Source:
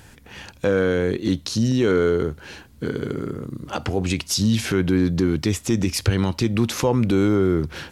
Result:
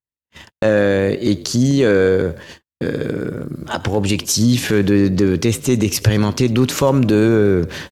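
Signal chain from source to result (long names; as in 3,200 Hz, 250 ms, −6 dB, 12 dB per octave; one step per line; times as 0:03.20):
echo with shifted repeats 93 ms, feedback 45%, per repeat +35 Hz, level −20 dB
pitch shifter +1.5 semitones
noise gate −37 dBFS, range −58 dB
level +5 dB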